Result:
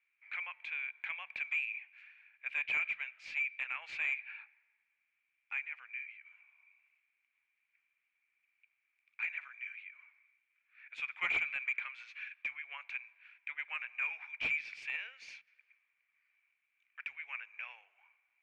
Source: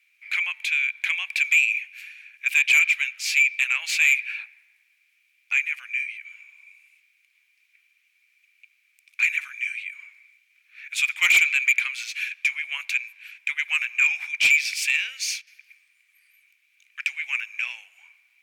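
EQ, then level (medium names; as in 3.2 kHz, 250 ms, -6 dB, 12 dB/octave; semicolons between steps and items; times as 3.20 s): low-pass 1.1 kHz 12 dB/octave; hum notches 60/120/180/240 Hz; -2.5 dB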